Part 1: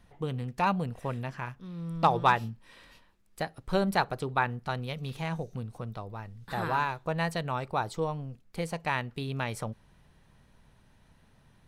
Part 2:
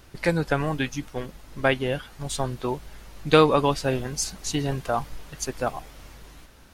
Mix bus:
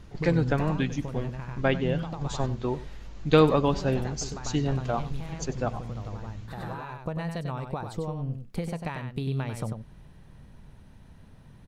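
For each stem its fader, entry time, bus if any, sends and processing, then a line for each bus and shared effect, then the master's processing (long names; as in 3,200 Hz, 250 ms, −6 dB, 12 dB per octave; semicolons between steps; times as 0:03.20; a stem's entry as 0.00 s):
+2.0 dB, 0.00 s, no send, echo send −7 dB, downward compressor 12 to 1, threshold −36 dBFS, peak gain reduction 19 dB; automatic ducking −8 dB, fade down 1.70 s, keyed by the second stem
−6.0 dB, 0.00 s, no send, echo send −16.5 dB, elliptic low-pass filter 7,200 Hz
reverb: not used
echo: single-tap delay 96 ms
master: low-shelf EQ 480 Hz +9 dB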